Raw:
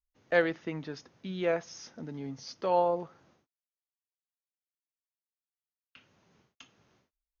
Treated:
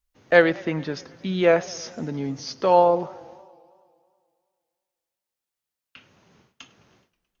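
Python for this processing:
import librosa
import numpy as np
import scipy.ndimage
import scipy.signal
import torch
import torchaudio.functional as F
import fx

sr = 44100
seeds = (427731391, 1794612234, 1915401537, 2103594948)

p1 = fx.rider(x, sr, range_db=4, speed_s=2.0)
p2 = x + (p1 * 10.0 ** (-2.0 / 20.0))
p3 = fx.echo_warbled(p2, sr, ms=107, feedback_pct=71, rate_hz=2.8, cents=165, wet_db=-22.5)
y = p3 * 10.0 ** (5.0 / 20.0)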